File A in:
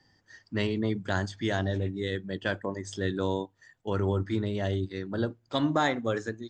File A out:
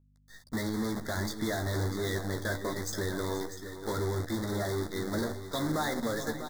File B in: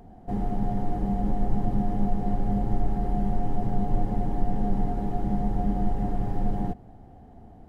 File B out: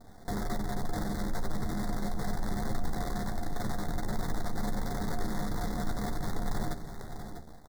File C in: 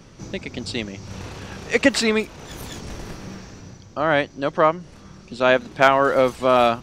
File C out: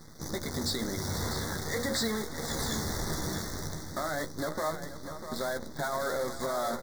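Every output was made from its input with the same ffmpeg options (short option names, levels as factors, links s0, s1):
-filter_complex "[0:a]lowpass=7800,bandreject=f=60:t=h:w=6,bandreject=f=120:t=h:w=6,bandreject=f=180:t=h:w=6,bandreject=f=240:t=h:w=6,bandreject=f=300:t=h:w=6,bandreject=f=360:t=h:w=6,bandreject=f=420:t=h:w=6,bandreject=f=480:t=h:w=6,bandreject=f=540:t=h:w=6,bandreject=f=600:t=h:w=6,dynaudnorm=f=140:g=5:m=2,alimiter=limit=0.251:level=0:latency=1:release=17,acompressor=threshold=0.0708:ratio=6,crystalizer=i=1:c=0,acrusher=bits=6:dc=4:mix=0:aa=0.000001,asoftclip=type=tanh:threshold=0.0668,aeval=exprs='val(0)+0.001*(sin(2*PI*50*n/s)+sin(2*PI*2*50*n/s)/2+sin(2*PI*3*50*n/s)/3+sin(2*PI*4*50*n/s)/4+sin(2*PI*5*50*n/s)/5)':c=same,asuperstop=centerf=2700:order=12:qfactor=2,asplit=2[s0][s1];[s1]adelay=13,volume=0.422[s2];[s0][s2]amix=inputs=2:normalize=0,asplit=2[s3][s4];[s4]aecho=0:1:481|646:0.2|0.299[s5];[s3][s5]amix=inputs=2:normalize=0,volume=0.75"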